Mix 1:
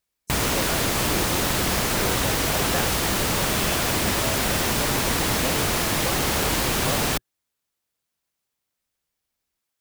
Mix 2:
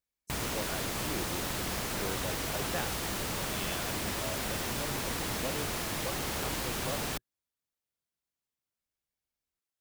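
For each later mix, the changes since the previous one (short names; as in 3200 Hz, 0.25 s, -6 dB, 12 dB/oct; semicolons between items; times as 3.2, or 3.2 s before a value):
speech -7.0 dB; background -11.5 dB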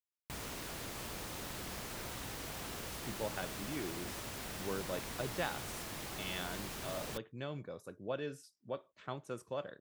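speech: entry +2.65 s; background -9.5 dB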